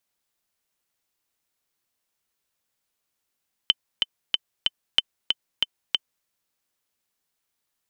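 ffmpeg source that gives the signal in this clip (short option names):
-f lavfi -i "aevalsrc='pow(10,(-3.5-4*gte(mod(t,4*60/187),60/187))/20)*sin(2*PI*3060*mod(t,60/187))*exp(-6.91*mod(t,60/187)/0.03)':d=2.56:s=44100"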